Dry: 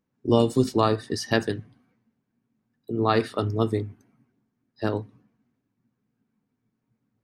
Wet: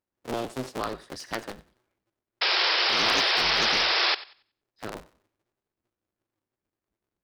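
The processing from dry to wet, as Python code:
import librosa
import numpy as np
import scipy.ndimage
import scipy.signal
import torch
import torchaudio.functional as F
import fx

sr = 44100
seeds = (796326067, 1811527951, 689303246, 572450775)

p1 = fx.cycle_switch(x, sr, every=2, mode='inverted')
p2 = fx.spec_paint(p1, sr, seeds[0], shape='noise', start_s=2.41, length_s=1.74, low_hz=320.0, high_hz=5400.0, level_db=-15.0)
p3 = fx.low_shelf(p2, sr, hz=370.0, db=-7.5)
p4 = p3 + fx.echo_thinned(p3, sr, ms=93, feedback_pct=25, hz=420.0, wet_db=-17.5, dry=0)
p5 = fx.doppler_dist(p4, sr, depth_ms=0.3)
y = p5 * librosa.db_to_amplitude(-8.0)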